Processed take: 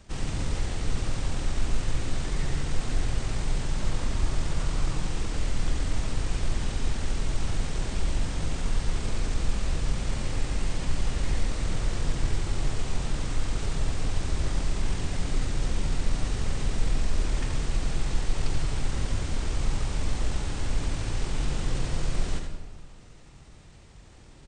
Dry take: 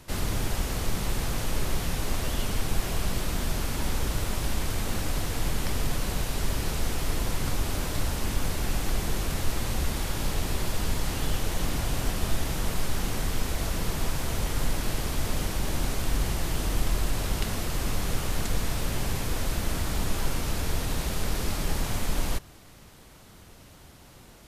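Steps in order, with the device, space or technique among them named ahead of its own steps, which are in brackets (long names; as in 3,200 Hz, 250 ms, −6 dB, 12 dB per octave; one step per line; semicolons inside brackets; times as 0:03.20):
0:03.77–0:04.95: parametric band 1,800 Hz +3 dB 0.51 octaves
monster voice (pitch shifter −8 semitones; low-shelf EQ 250 Hz +5.5 dB; single-tap delay 79 ms −7 dB; convolution reverb RT60 1.4 s, pre-delay 75 ms, DRR 7 dB)
level −4.5 dB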